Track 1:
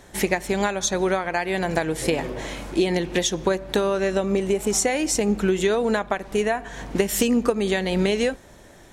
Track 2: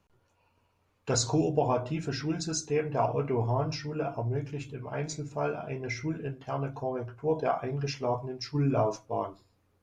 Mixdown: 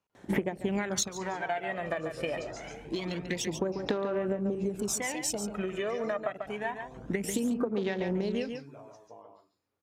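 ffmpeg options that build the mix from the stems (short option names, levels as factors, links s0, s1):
-filter_complex "[0:a]highpass=110,afwtdn=0.0224,aphaser=in_gain=1:out_gain=1:delay=1.7:decay=0.68:speed=0.26:type=sinusoidal,adelay=150,volume=1.19,asplit=2[s0][s1];[s1]volume=0.0944[s2];[1:a]highpass=f=290:p=1,acompressor=threshold=0.0158:ratio=12,volume=0.299,asplit=3[s3][s4][s5];[s4]volume=0.562[s6];[s5]apad=whole_len=400363[s7];[s0][s7]sidechaincompress=threshold=0.00112:ratio=4:attack=7.2:release=913[s8];[s2][s6]amix=inputs=2:normalize=0,aecho=0:1:141:1[s9];[s8][s3][s9]amix=inputs=3:normalize=0,acompressor=threshold=0.0501:ratio=16"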